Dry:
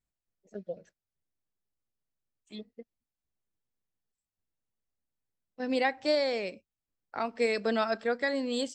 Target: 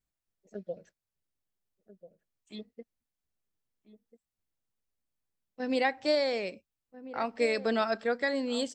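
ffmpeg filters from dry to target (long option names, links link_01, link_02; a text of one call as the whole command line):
ffmpeg -i in.wav -filter_complex "[0:a]asplit=2[link_01][link_02];[link_02]adelay=1341,volume=-14dB,highshelf=frequency=4000:gain=-30.2[link_03];[link_01][link_03]amix=inputs=2:normalize=0" out.wav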